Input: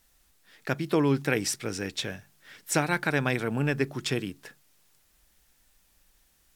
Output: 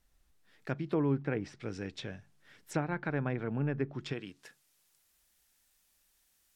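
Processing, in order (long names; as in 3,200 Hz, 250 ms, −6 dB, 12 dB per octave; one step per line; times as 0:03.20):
treble cut that deepens with the level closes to 1,800 Hz, closed at −22.5 dBFS
spectral tilt −1.5 dB per octave, from 0:04.12 +1.5 dB per octave
level −8.5 dB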